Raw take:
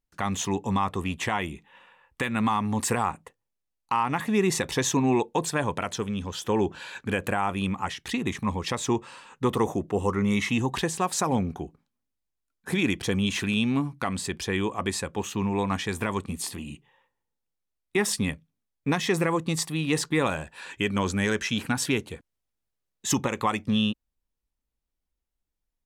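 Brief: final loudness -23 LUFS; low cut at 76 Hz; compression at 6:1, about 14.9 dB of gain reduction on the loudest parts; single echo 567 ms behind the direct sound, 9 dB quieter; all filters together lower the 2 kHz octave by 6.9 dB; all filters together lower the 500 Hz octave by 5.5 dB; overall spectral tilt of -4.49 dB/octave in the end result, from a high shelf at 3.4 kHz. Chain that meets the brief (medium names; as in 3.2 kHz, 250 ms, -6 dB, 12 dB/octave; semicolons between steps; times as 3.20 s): high-pass 76 Hz; peaking EQ 500 Hz -7 dB; peaking EQ 2 kHz -7 dB; treble shelf 3.4 kHz -4.5 dB; compression 6:1, threshold -39 dBFS; delay 567 ms -9 dB; trim +20 dB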